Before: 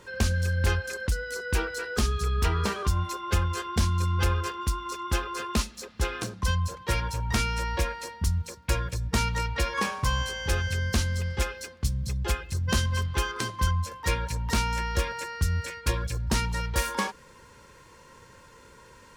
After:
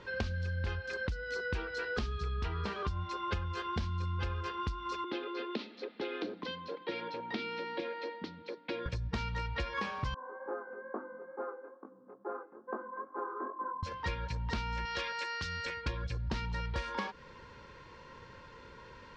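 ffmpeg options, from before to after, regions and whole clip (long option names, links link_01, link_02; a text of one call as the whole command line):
ffmpeg -i in.wav -filter_complex "[0:a]asettb=1/sr,asplit=3[link_01][link_02][link_03];[link_01]atrim=end=5.044[link_04];[link_02]atrim=start=5.04:end=8.86,asetpts=PTS-STARTPTS,afade=type=in:duration=0.004:curve=qsin,afade=type=out:start_time=3.816:duration=0.004:curve=qsin,acrossover=split=320|3000[link_05][link_06][link_07];[link_06]acompressor=threshold=-35dB:ratio=6:attack=3.2:release=140:knee=2.83:detection=peak[link_08];[link_05][link_08][link_07]amix=inputs=3:normalize=0,highpass=frequency=250:width=0.5412,highpass=frequency=250:width=1.3066,equalizer=frequency=300:width_type=q:width=4:gain=8,equalizer=frequency=450:width_type=q:width=4:gain=5,equalizer=frequency=1100:width_type=q:width=4:gain=-8,equalizer=frequency=1600:width_type=q:width=4:gain=-5,equalizer=frequency=2800:width_type=q:width=4:gain=-4,lowpass=frequency=3900:width=0.5412,lowpass=frequency=3900:width=1.3066[link_09];[link_03]atrim=start=8.856[link_10];[link_04][link_09]acrossfade=duration=0.004:curve1=hsin:curve2=qsin[link_11];[link_11][link_10]acrossfade=duration=0.004:curve1=qsin:curve2=hsin,asettb=1/sr,asplit=3[link_12][link_13][link_14];[link_12]atrim=end=10.144[link_15];[link_13]atrim=start=10.14:end=13.83,asetpts=PTS-STARTPTS,afade=type=in:duration=0.004:curve=qsin,afade=type=out:start_time=3.686:duration=0.004:curve=qsin,asuperpass=centerf=600:order=12:qfactor=0.56,flanger=delay=18.5:depth=5.9:speed=2.3[link_16];[link_14]atrim=start=13.826[link_17];[link_15][link_16]acrossfade=duration=0.004:curve1=hsin:curve2=qsin[link_18];[link_18][link_17]acrossfade=duration=0.004:curve1=qsin:curve2=hsin,asettb=1/sr,asplit=3[link_19][link_20][link_21];[link_19]atrim=end=14.854[link_22];[link_20]atrim=start=14.85:end=15.66,asetpts=PTS-STARTPTS,afade=type=in:duration=0.004:curve=qsin,afade=type=out:start_time=0.806:duration=0.004:curve=qsin,acrossover=split=5100[link_23][link_24];[link_24]acompressor=threshold=-52dB:ratio=4:attack=1:release=60[link_25];[link_23][link_25]amix=inputs=2:normalize=0,highpass=frequency=550:poles=1,aemphasis=mode=production:type=75fm[link_26];[link_21]atrim=start=15.656[link_27];[link_22][link_26]acrossfade=duration=0.004:curve1=hsin:curve2=qsin[link_28];[link_28][link_27]acrossfade=duration=0.004:curve1=qsin:curve2=hsin,lowpass=frequency=4600:width=0.5412,lowpass=frequency=4600:width=1.3066,acompressor=threshold=-33dB:ratio=6" out.wav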